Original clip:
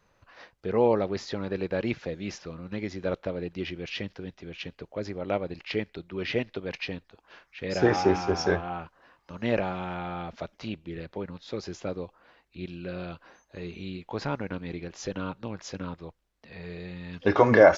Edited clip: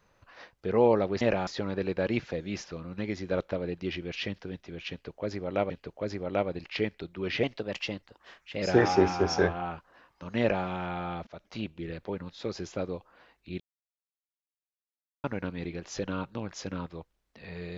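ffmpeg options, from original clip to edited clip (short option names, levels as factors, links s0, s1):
-filter_complex "[0:a]asplit=9[s0][s1][s2][s3][s4][s5][s6][s7][s8];[s0]atrim=end=1.212[s9];[s1]atrim=start=9.468:end=9.732[s10];[s2]atrim=start=1.208:end=5.442[s11];[s3]atrim=start=4.648:end=6.384[s12];[s4]atrim=start=6.38:end=7.7,asetpts=PTS-STARTPTS,asetrate=48951,aresample=44100,atrim=end_sample=52443,asetpts=PTS-STARTPTS[s13];[s5]atrim=start=7.696:end=10.35,asetpts=PTS-STARTPTS,afade=t=out:st=2.65:d=0.004:c=hsin:silence=0.0841395[s14];[s6]atrim=start=10.35:end=12.68,asetpts=PTS-STARTPTS,afade=t=in:d=0.42:c=qsin:silence=0.0841395,afade=t=out:st=2.326:d=0.004:c=hsin[s15];[s7]atrim=start=12.68:end=14.32,asetpts=PTS-STARTPTS,volume=0[s16];[s8]atrim=start=14.32,asetpts=PTS-STARTPTS,afade=t=in:d=0.004:c=hsin[s17];[s9][s10]acrossfade=d=0.004:c1=hsin:c2=hsin[s18];[s18][s11]acrossfade=d=0.004:c1=hsin:c2=hsin[s19];[s19][s12]acrossfade=d=0.004:c1=hsin:c2=hsin[s20];[s20][s13]acrossfade=d=0.004:c1=hsin:c2=hsin[s21];[s14][s15][s16][s17]concat=n=4:v=0:a=1[s22];[s21][s22]acrossfade=d=0.004:c1=hsin:c2=hsin"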